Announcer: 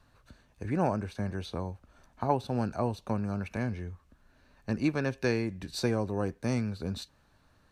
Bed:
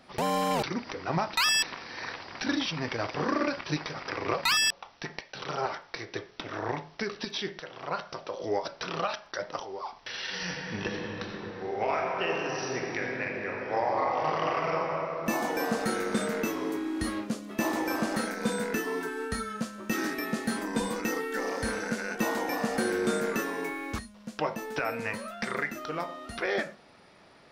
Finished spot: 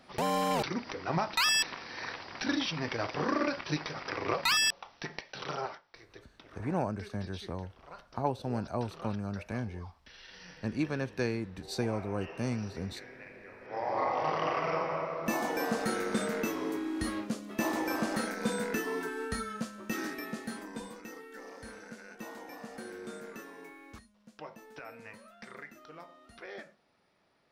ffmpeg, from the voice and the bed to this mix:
-filter_complex "[0:a]adelay=5950,volume=-3.5dB[a];[1:a]volume=12dB,afade=t=out:st=5.49:d=0.33:silence=0.188365,afade=t=in:st=13.61:d=0.41:silence=0.199526,afade=t=out:st=19.4:d=1.61:silence=0.223872[b];[a][b]amix=inputs=2:normalize=0"

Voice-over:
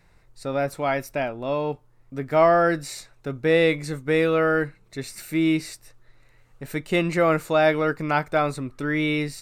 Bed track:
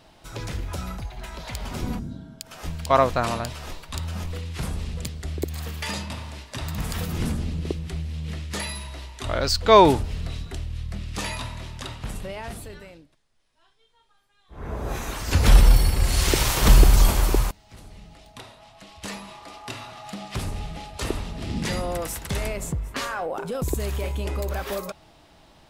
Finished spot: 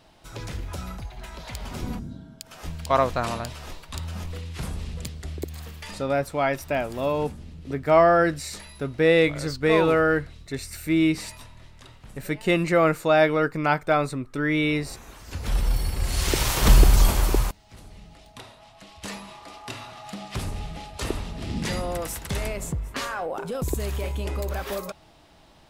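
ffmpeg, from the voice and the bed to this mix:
-filter_complex "[0:a]adelay=5550,volume=0.5dB[a];[1:a]volume=10dB,afade=t=out:st=5.19:d=0.95:silence=0.281838,afade=t=in:st=15.44:d=1.14:silence=0.237137[b];[a][b]amix=inputs=2:normalize=0"

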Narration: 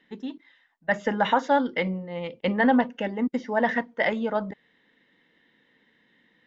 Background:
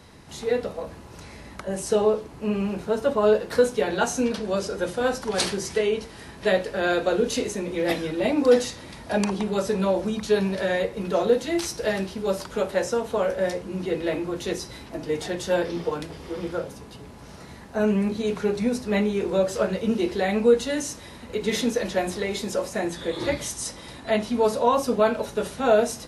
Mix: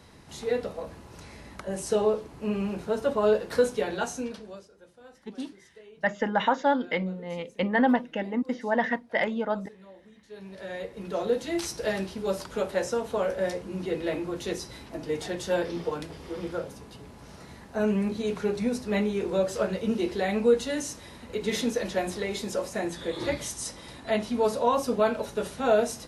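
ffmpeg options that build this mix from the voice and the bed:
-filter_complex "[0:a]adelay=5150,volume=-2dB[a];[1:a]volume=20.5dB,afade=t=out:st=3.7:d=0.98:silence=0.0630957,afade=t=in:st=10.29:d=1.39:silence=0.0630957[b];[a][b]amix=inputs=2:normalize=0"

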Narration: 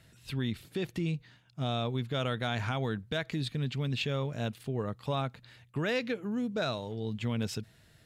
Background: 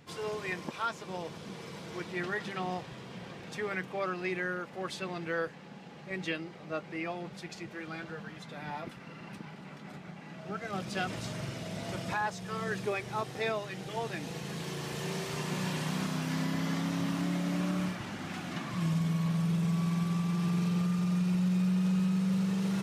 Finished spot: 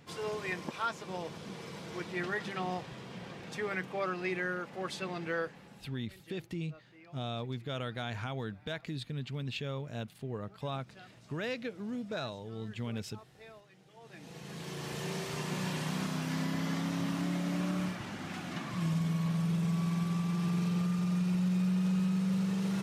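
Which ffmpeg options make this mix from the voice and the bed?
-filter_complex "[0:a]adelay=5550,volume=-5.5dB[a];[1:a]volume=18.5dB,afade=t=out:st=5.3:d=0.78:silence=0.1,afade=t=in:st=14:d=0.91:silence=0.112202[b];[a][b]amix=inputs=2:normalize=0"

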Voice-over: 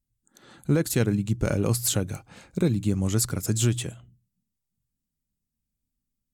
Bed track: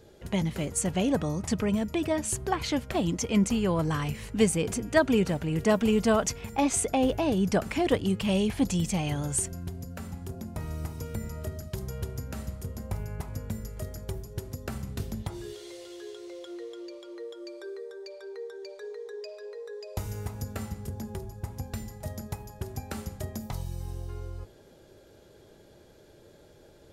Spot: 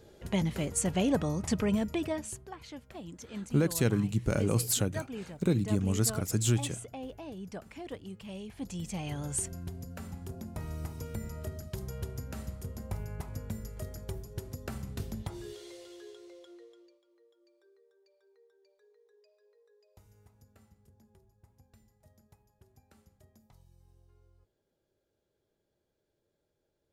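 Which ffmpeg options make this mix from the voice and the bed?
-filter_complex "[0:a]adelay=2850,volume=-4dB[a];[1:a]volume=12dB,afade=t=out:st=1.82:d=0.63:silence=0.16788,afade=t=in:st=8.5:d=1.02:silence=0.211349,afade=t=out:st=15.57:d=1.43:silence=0.0749894[b];[a][b]amix=inputs=2:normalize=0"

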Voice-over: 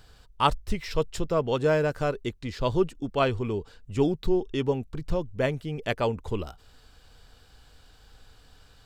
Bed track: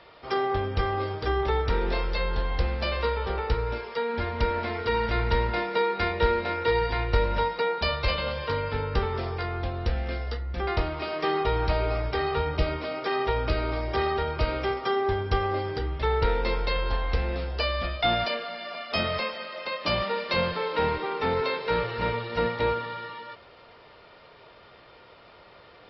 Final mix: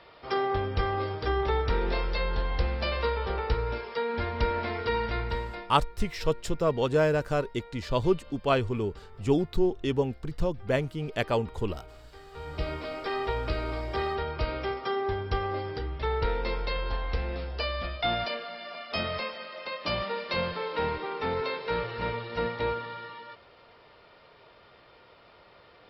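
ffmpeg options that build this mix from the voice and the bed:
-filter_complex "[0:a]adelay=5300,volume=-0.5dB[a];[1:a]volume=17.5dB,afade=t=out:st=4.82:d=0.99:silence=0.0841395,afade=t=in:st=12.31:d=0.43:silence=0.112202[b];[a][b]amix=inputs=2:normalize=0"

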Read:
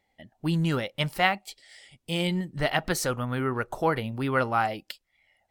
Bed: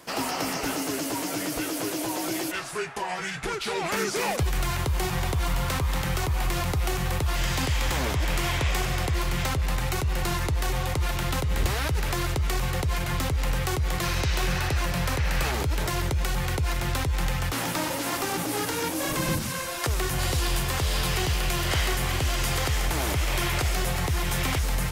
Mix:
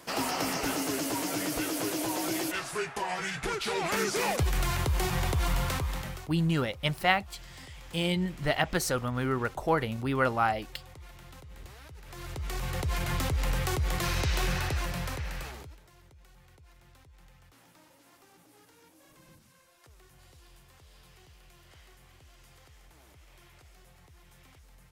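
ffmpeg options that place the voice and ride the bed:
-filter_complex "[0:a]adelay=5850,volume=-1.5dB[a];[1:a]volume=17.5dB,afade=t=out:st=5.57:d=0.72:silence=0.0944061,afade=t=in:st=12.05:d=0.99:silence=0.105925,afade=t=out:st=14.43:d=1.37:silence=0.0398107[b];[a][b]amix=inputs=2:normalize=0"

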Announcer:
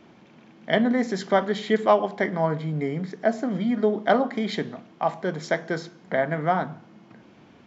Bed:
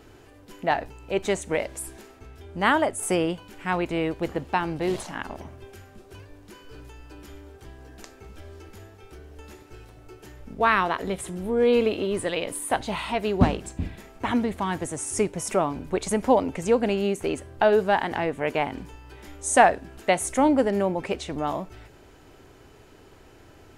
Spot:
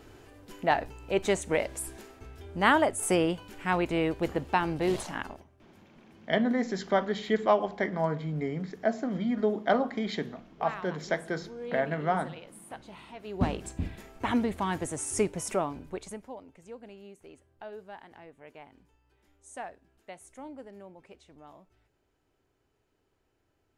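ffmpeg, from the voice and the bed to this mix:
-filter_complex "[0:a]adelay=5600,volume=-5dB[a];[1:a]volume=14.5dB,afade=t=out:st=5.17:d=0.28:silence=0.133352,afade=t=in:st=13.23:d=0.43:silence=0.158489,afade=t=out:st=15.28:d=1:silence=0.0891251[b];[a][b]amix=inputs=2:normalize=0"

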